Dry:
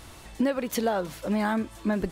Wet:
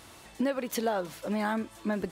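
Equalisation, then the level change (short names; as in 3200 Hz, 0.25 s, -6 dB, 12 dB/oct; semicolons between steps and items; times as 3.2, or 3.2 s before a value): HPF 180 Hz 6 dB/oct; -2.5 dB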